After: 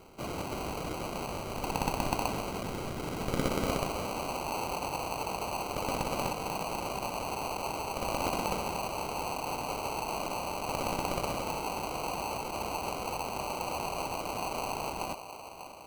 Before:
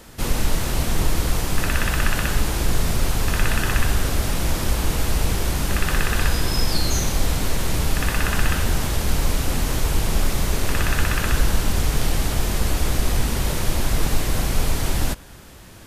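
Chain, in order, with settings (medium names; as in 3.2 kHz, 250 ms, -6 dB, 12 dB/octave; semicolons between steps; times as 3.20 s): band-pass sweep 5.8 kHz -> 940 Hz, 0.70–4.15 s; feedback echo behind a band-pass 593 ms, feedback 56%, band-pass 840 Hz, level -11.5 dB; sample-and-hold 25×; trim +2 dB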